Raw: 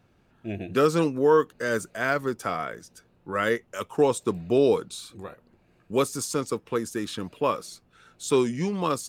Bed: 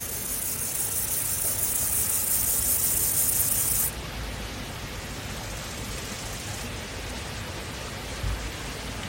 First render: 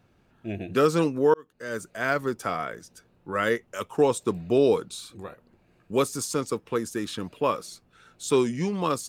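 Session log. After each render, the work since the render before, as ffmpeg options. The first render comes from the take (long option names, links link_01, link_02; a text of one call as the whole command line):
ffmpeg -i in.wav -filter_complex "[0:a]asplit=2[link_01][link_02];[link_01]atrim=end=1.34,asetpts=PTS-STARTPTS,afade=type=out:start_time=1.336:duration=0.004:curve=hsin[link_03];[link_02]atrim=start=1.34,asetpts=PTS-STARTPTS,afade=type=in:duration=0.78[link_04];[link_03][link_04]concat=n=2:v=0:a=1" out.wav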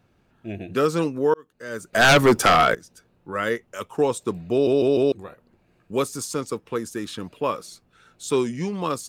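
ffmpeg -i in.wav -filter_complex "[0:a]asettb=1/sr,asplit=3[link_01][link_02][link_03];[link_01]atrim=end=1.934[link_04];[link_02]atrim=start=1.93:end=2.75,asetpts=PTS-STARTPTS,afade=type=in:duration=0.004:curve=qsin,afade=type=out:start_time=0.816:duration=0.004:curve=qsin,aeval=exprs='0.335*sin(PI/2*4.47*val(0)/0.335)':channel_layout=same[link_05];[link_03]atrim=start=2.746[link_06];[link_04][link_05]acrossfade=duration=0.004:curve1=hsin:curve2=qsin[link_07];[link_07][link_06]acrossfade=duration=0.004:curve1=qsin:curve2=hsin,asplit=5[link_08][link_09][link_10][link_11][link_12];[link_08]atrim=end=4.672[link_13];[link_09]atrim=start=4.518:end=4.672[link_14];[link_10]atrim=start=4.518:end=4.672[link_15];[link_11]atrim=start=4.518:end=4.672[link_16];[link_12]atrim=start=5.118[link_17];[link_13][link_14]acrossfade=duration=0.004:curve1=hsin:curve2=hsin[link_18];[link_18][link_15]acrossfade=duration=0.004:curve1=hsin:curve2=hsin[link_19];[link_19][link_16]acrossfade=duration=0.004:curve1=hsin:curve2=hsin[link_20];[link_20][link_17]acrossfade=duration=0.004:curve1=hsin:curve2=hsin" out.wav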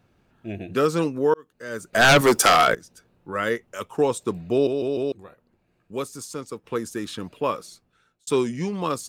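ffmpeg -i in.wav -filter_complex "[0:a]asettb=1/sr,asplit=3[link_01][link_02][link_03];[link_01]atrim=end=2.214[link_04];[link_02]atrim=start=2.21:end=2.68,asetpts=PTS-STARTPTS,afade=type=in:duration=0.004:curve=qsin,afade=type=out:start_time=0.466:duration=0.004:curve=qsin,bass=frequency=250:gain=-8,treble=frequency=4000:gain=7[link_05];[link_03]atrim=start=2.676[link_06];[link_04][link_05]acrossfade=duration=0.004:curve1=hsin:curve2=qsin[link_07];[link_07][link_06]acrossfade=duration=0.004:curve1=qsin:curve2=hsin,asplit=4[link_08][link_09][link_10][link_11];[link_08]atrim=end=4.672[link_12];[link_09]atrim=start=4.668:end=6.642,asetpts=PTS-STARTPTS,volume=-6dB[link_13];[link_10]atrim=start=6.638:end=8.27,asetpts=PTS-STARTPTS,afade=type=out:start_time=0.882:duration=0.75[link_14];[link_11]atrim=start=8.27,asetpts=PTS-STARTPTS,afade=type=in:duration=0.004:curve=hsin[link_15];[link_12][link_13]acrossfade=duration=0.004:curve1=hsin:curve2=hsin[link_16];[link_14][link_15]concat=n=2:v=0:a=1[link_17];[link_16][link_17]acrossfade=duration=0.004:curve1=hsin:curve2=hsin" out.wav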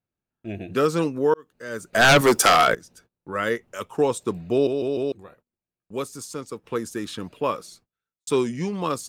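ffmpeg -i in.wav -af "agate=range=-26dB:threshold=-54dB:ratio=16:detection=peak" out.wav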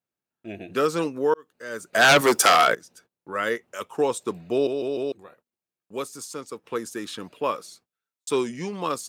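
ffmpeg -i in.wav -af "highpass=frequency=320:poles=1" out.wav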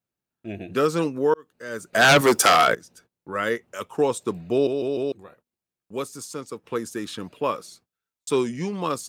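ffmpeg -i in.wav -af "lowshelf=frequency=180:gain=9.5" out.wav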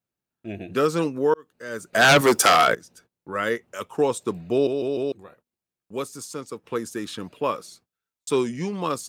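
ffmpeg -i in.wav -af anull out.wav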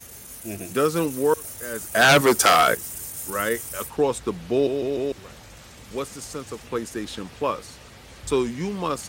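ffmpeg -i in.wav -i bed.wav -filter_complex "[1:a]volume=-10.5dB[link_01];[0:a][link_01]amix=inputs=2:normalize=0" out.wav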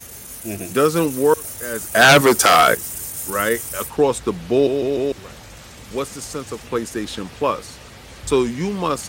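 ffmpeg -i in.wav -af "volume=5dB,alimiter=limit=-2dB:level=0:latency=1" out.wav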